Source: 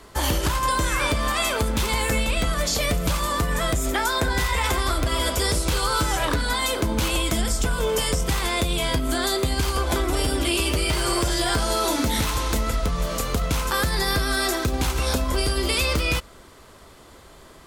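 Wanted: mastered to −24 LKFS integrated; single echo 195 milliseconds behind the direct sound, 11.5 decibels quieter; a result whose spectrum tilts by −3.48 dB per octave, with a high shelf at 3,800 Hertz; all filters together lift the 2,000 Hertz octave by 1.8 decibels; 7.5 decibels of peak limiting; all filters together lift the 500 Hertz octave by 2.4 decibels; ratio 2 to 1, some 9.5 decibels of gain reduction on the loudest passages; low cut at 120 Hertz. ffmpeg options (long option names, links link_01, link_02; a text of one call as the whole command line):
ffmpeg -i in.wav -af "highpass=120,equalizer=frequency=500:width_type=o:gain=3,equalizer=frequency=2000:width_type=o:gain=3.5,highshelf=frequency=3800:gain=-5.5,acompressor=threshold=-37dB:ratio=2,alimiter=level_in=2.5dB:limit=-24dB:level=0:latency=1,volume=-2.5dB,aecho=1:1:195:0.266,volume=11dB" out.wav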